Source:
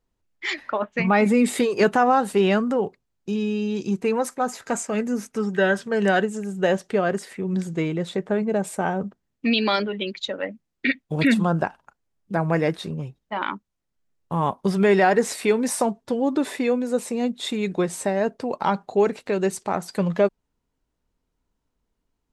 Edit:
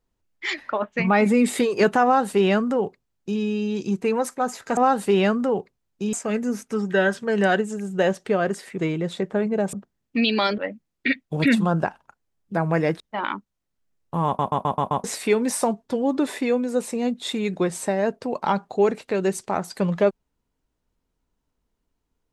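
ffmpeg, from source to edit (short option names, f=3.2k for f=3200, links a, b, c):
-filter_complex "[0:a]asplit=13[a][b][c][d][e][f][g][h][i][j][k][l][m];[a]atrim=end=4.772[n];[b]atrim=start=2.038:end=3.402[o];[c]atrim=start=4.768:end=7.422[p];[d]atrim=start=7.738:end=8.692[q];[e]atrim=start=9.018:end=9.872[r];[f]atrim=start=10.368:end=12.792[s];[g]atrim=start=13.178:end=14.572[t];[h]atrim=start=14.438:end=14.572[u];[i]atrim=start=14.438:end=14.572[v];[j]atrim=start=14.438:end=14.572[w];[k]atrim=start=14.438:end=14.572[x];[l]atrim=start=14.438:end=14.572[y];[m]atrim=start=15.218[z];[n][o]acrossfade=d=0.004:c1=hsin:c2=hsin[aa];[aa][p]acrossfade=d=0.004:c1=hsin:c2=hsin[ab];[ab][q]acrossfade=d=0.004:c1=hsin:c2=hsin[ac];[ac][r]acrossfade=d=0.004:c1=hsin:c2=hsin[ad];[ad][s]acrossfade=d=0.004:c1=hsin:c2=hsin[ae];[ae][t]acrossfade=d=0.004:c1=hsin:c2=hsin[af];[af][u]acrossfade=d=0.004:c1=hsin:c2=hsin[ag];[ag][v]acrossfade=d=0.004:c1=hsin:c2=hsin[ah];[ah][w]acrossfade=d=0.004:c1=hsin:c2=hsin[ai];[ai][x]acrossfade=d=0.004:c1=hsin:c2=hsin[aj];[aj][y]acrossfade=d=0.004:c1=hsin:c2=hsin[ak];[ak][z]acrossfade=d=0.004:c1=hsin:c2=hsin"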